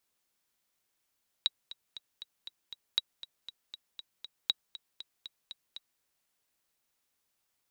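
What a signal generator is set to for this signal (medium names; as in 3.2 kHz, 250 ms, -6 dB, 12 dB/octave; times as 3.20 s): metronome 237 bpm, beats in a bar 6, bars 3, 3.85 kHz, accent 16.5 dB -13 dBFS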